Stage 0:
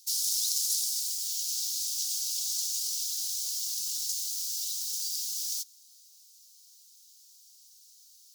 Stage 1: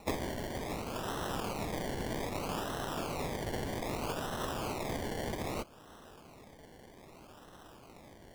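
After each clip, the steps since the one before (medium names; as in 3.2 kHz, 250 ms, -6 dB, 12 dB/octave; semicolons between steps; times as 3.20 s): spectral contrast reduction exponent 0.15; low-pass that closes with the level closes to 2.3 kHz, closed at -26 dBFS; decimation with a swept rate 27×, swing 60% 0.63 Hz; trim +5 dB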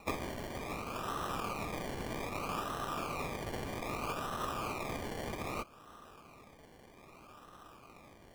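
small resonant body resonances 1.2/2.4 kHz, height 13 dB, ringing for 25 ms; trim -3.5 dB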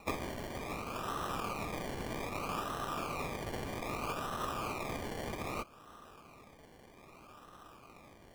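no audible change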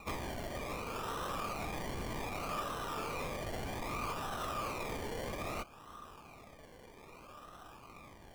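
saturation -36 dBFS, distortion -13 dB; flange 0.5 Hz, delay 0.8 ms, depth 1.5 ms, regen +61%; trim +6.5 dB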